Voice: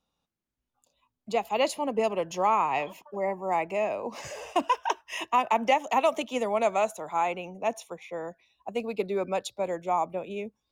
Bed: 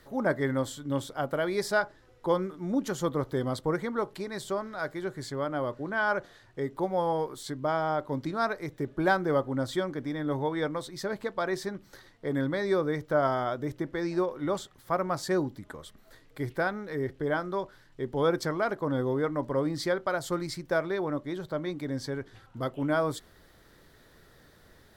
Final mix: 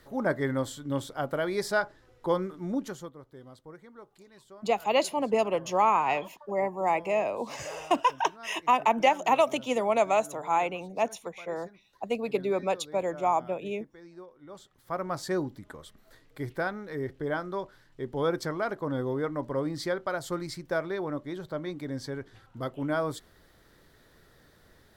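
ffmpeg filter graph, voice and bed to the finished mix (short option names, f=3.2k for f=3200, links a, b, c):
-filter_complex "[0:a]adelay=3350,volume=1dB[a];[1:a]volume=16.5dB,afade=t=out:st=2.66:d=0.46:silence=0.11885,afade=t=in:st=14.48:d=0.67:silence=0.141254[b];[a][b]amix=inputs=2:normalize=0"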